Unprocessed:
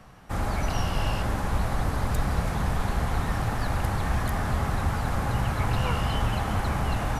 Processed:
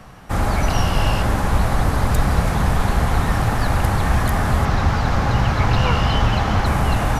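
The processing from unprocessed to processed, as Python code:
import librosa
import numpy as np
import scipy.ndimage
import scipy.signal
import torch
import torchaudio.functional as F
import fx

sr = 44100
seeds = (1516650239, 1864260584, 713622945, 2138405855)

y = fx.high_shelf_res(x, sr, hz=7200.0, db=-9.0, q=1.5, at=(4.65, 6.66))
y = y * librosa.db_to_amplitude(8.5)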